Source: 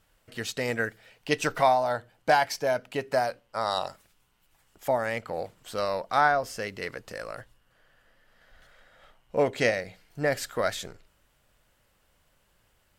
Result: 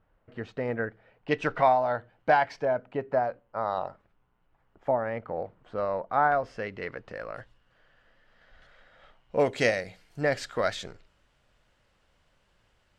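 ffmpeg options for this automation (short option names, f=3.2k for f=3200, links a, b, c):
-af "asetnsamples=n=441:p=0,asendcmd='1.28 lowpass f 2300;2.65 lowpass f 1300;6.32 lowpass f 2300;7.35 lowpass f 4500;9.4 lowpass f 9900;10.21 lowpass f 5500',lowpass=1.3k"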